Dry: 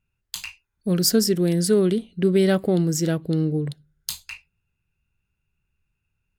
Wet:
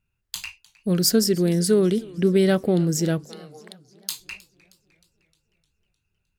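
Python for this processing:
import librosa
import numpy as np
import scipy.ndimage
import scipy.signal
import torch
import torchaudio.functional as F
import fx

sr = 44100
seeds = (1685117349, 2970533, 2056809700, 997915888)

y = fx.highpass(x, sr, hz=700.0, slope=24, at=(3.24, 4.2))
y = fx.echo_warbled(y, sr, ms=309, feedback_pct=56, rate_hz=2.8, cents=141, wet_db=-23.0)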